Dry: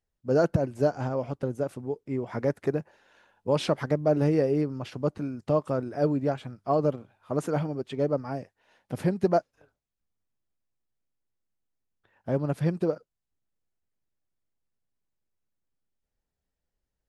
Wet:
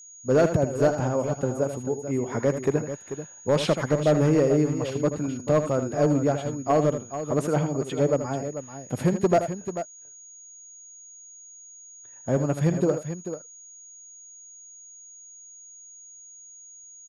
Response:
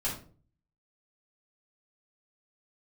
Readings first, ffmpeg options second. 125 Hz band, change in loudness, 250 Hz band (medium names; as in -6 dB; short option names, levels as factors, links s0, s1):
+4.0 dB, +3.5 dB, +4.0 dB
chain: -af "asoftclip=type=hard:threshold=0.133,aecho=1:1:79|439:0.316|0.299,aeval=exprs='val(0)+0.00398*sin(2*PI*6700*n/s)':c=same,volume=1.5"